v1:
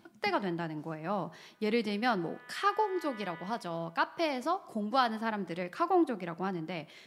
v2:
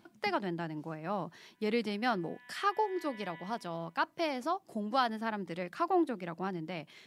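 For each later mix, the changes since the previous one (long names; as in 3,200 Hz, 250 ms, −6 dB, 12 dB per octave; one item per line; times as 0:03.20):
background: add Butterworth band-reject 1,300 Hz, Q 2.3
reverb: off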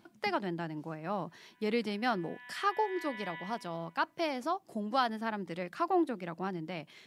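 background +6.5 dB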